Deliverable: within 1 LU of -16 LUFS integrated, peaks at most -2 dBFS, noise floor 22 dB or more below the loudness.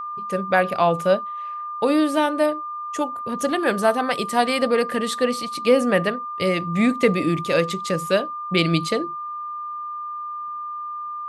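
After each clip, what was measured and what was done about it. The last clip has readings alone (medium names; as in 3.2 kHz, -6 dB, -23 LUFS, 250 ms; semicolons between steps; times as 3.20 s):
steady tone 1.2 kHz; tone level -28 dBFS; loudness -22.5 LUFS; peak level -4.0 dBFS; loudness target -16.0 LUFS
-> band-stop 1.2 kHz, Q 30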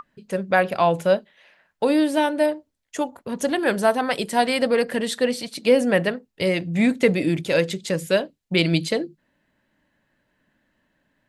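steady tone not found; loudness -22.0 LUFS; peak level -5.0 dBFS; loudness target -16.0 LUFS
-> trim +6 dB; peak limiter -2 dBFS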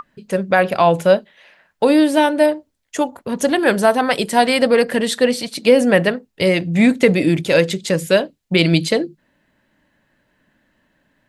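loudness -16.5 LUFS; peak level -2.0 dBFS; noise floor -67 dBFS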